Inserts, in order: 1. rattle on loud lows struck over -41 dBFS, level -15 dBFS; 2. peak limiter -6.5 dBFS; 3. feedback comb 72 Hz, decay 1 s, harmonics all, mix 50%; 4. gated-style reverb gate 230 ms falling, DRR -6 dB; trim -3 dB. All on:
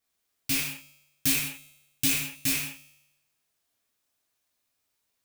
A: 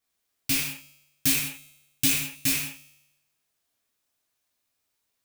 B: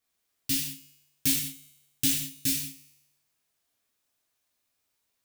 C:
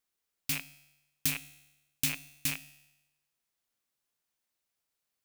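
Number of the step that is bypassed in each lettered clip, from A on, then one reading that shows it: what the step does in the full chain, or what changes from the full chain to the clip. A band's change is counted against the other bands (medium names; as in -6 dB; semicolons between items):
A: 2, loudness change +2.0 LU; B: 1, 2 kHz band -8.5 dB; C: 4, crest factor change +3.0 dB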